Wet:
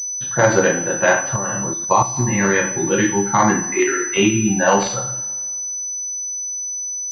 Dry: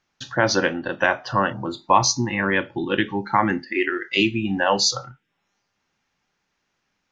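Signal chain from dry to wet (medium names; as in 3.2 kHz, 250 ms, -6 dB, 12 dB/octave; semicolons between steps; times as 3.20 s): two-slope reverb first 0.48 s, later 1.8 s, from -20 dB, DRR -4 dB; 1.36–2.17 s: level held to a coarse grid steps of 12 dB; class-D stage that switches slowly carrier 6 kHz; trim -1 dB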